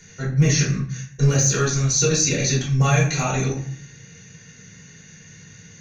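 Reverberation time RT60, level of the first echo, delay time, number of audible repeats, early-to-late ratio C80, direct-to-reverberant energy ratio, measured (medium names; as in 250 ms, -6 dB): 0.55 s, no echo, no echo, no echo, 10.5 dB, -6.5 dB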